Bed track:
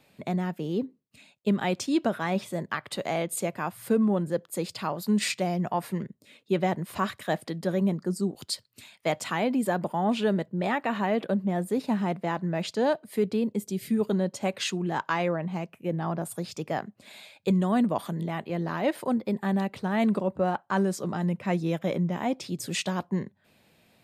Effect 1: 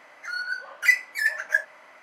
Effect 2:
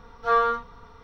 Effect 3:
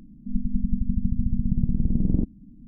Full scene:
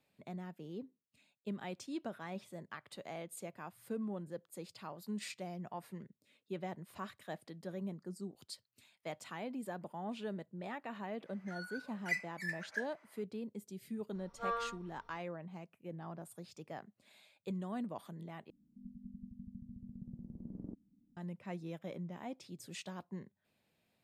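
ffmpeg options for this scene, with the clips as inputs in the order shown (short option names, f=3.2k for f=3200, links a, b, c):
-filter_complex "[0:a]volume=-16.5dB[a];[1:a]lowpass=11k[b];[3:a]highpass=f=460:p=1[c];[a]asplit=2[d][e];[d]atrim=end=18.504[f];[c]atrim=end=2.67,asetpts=PTS-STARTPTS,volume=-14dB[g];[e]atrim=start=21.166[h];[b]atrim=end=2.02,asetpts=PTS-STARTPTS,volume=-17dB,afade=t=in:d=0.05,afade=t=out:st=1.97:d=0.05,adelay=11230[i];[2:a]atrim=end=1.03,asetpts=PTS-STARTPTS,volume=-16.5dB,afade=t=in:d=0.004:c=hsin,afade=t=out:st=1.026:d=0.004:c=hsin,adelay=14150[j];[f][g]acrossfade=d=0.004:c1=hsin:c2=hsin[k];[k][h]acrossfade=d=0.004:c1=hsin:c2=hsin[l];[l][i][j]amix=inputs=3:normalize=0"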